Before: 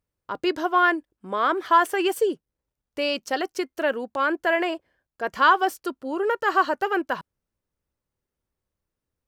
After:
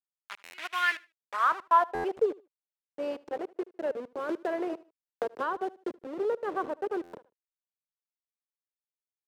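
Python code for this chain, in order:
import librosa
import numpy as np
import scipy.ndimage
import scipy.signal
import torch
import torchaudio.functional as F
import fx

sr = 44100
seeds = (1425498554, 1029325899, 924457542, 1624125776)

y = fx.delta_hold(x, sr, step_db=-23.5)
y = fx.bass_treble(y, sr, bass_db=4, treble_db=-3)
y = fx.filter_sweep_bandpass(y, sr, from_hz=2300.0, to_hz=440.0, start_s=0.99, end_s=2.2, q=2.3)
y = fx.tilt_eq(y, sr, slope=2.5)
y = fx.echo_feedback(y, sr, ms=76, feedback_pct=22, wet_db=-22.0)
y = fx.buffer_glitch(y, sr, at_s=(0.43, 1.94, 7.03), block=512, repeats=8)
y = fx.band_squash(y, sr, depth_pct=100, at=(4.29, 5.95))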